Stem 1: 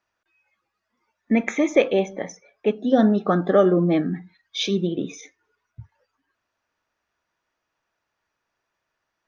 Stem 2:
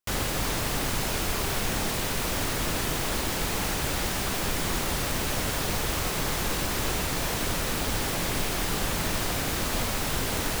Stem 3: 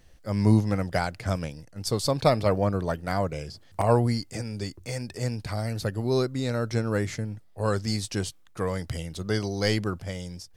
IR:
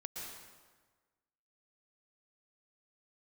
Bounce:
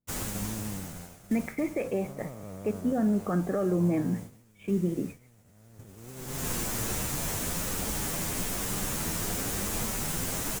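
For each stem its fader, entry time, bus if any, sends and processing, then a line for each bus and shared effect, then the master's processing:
-7.0 dB, 0.00 s, bus A, no send, steep low-pass 3.1 kHz
-3.5 dB, 0.00 s, no bus, no send, resonant high shelf 5.5 kHz +6 dB, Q 1.5; endless flanger 9.9 ms +1.1 Hz; auto duck -20 dB, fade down 1.85 s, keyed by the first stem
-13.5 dB, 0.00 s, bus A, no send, spectral blur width 520 ms
bus A: 0.0 dB, steep low-pass 2.6 kHz 36 dB/octave; peak limiter -21.5 dBFS, peak gain reduction 10.5 dB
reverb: none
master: peaking EQ 180 Hz +5 dB 0.95 oct; expander -33 dBFS

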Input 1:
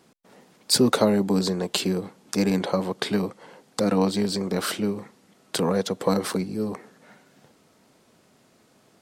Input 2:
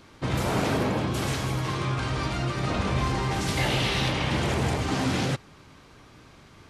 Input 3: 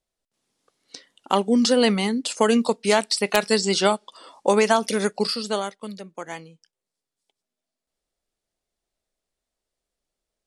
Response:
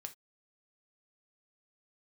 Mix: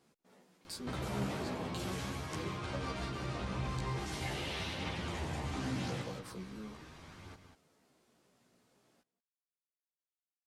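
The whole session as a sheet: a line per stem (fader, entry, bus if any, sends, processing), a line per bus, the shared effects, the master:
-8.5 dB, 0.00 s, muted 3.79–5.87 s, no send, echo send -21.5 dB, compression 3:1, threshold -36 dBFS, peak gain reduction 16 dB
+0.5 dB, 0.65 s, no send, echo send -7.5 dB, compression 4:1, threshold -36 dBFS, peak gain reduction 12.5 dB
mute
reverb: none
echo: delay 189 ms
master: chorus voices 2, 0.41 Hz, delay 14 ms, depth 3.1 ms

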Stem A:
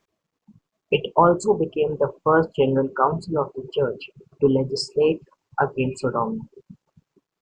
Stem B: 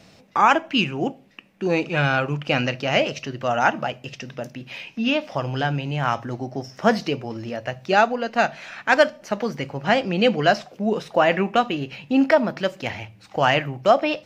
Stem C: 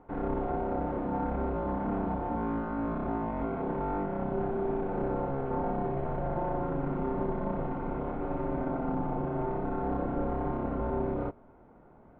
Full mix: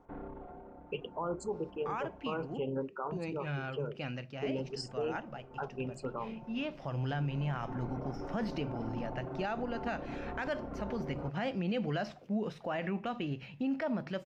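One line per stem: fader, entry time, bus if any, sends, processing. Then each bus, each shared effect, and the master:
-15.0 dB, 0.00 s, no send, none
6.41 s -20 dB -> 6.88 s -12 dB, 1.50 s, no send, tone controls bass +7 dB, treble -6 dB
-5.5 dB, 0.00 s, muted 2.55–4.57 s, no send, reverb removal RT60 0.59 s; peak limiter -27 dBFS, peak gain reduction 7 dB; auto duck -13 dB, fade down 0.85 s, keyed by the first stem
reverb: none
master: peak limiter -26.5 dBFS, peak gain reduction 11 dB

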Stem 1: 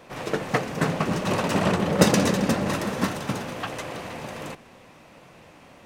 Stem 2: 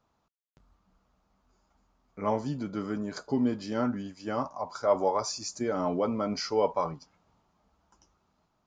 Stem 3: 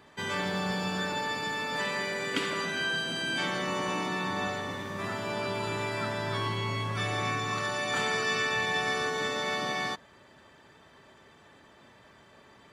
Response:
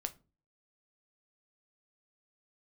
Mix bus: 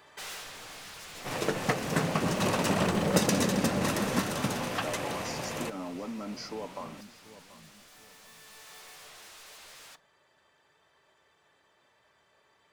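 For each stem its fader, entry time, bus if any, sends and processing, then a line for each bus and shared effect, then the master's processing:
-1.0 dB, 1.15 s, no bus, no send, no echo send, treble shelf 4.8 kHz +6.5 dB
-6.0 dB, 0.00 s, bus A, no send, echo send -22 dB, resonant low shelf 300 Hz +8.5 dB, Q 1.5
4.90 s -3.5 dB -> 5.13 s -14 dB, 0.00 s, bus A, send -3 dB, no echo send, hard clipper -26.5 dBFS, distortion -16 dB; treble shelf 5.7 kHz +3.5 dB; wavefolder -36 dBFS; auto duck -14 dB, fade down 0.25 s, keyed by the second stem
bus A: 0.0 dB, high-pass 240 Hz 24 dB/octave; compression, threshold -35 dBFS, peak gain reduction 11.5 dB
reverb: on, RT60 0.35 s, pre-delay 6 ms
echo: feedback delay 733 ms, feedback 30%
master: compression 2:1, threshold -26 dBFS, peak gain reduction 8.5 dB

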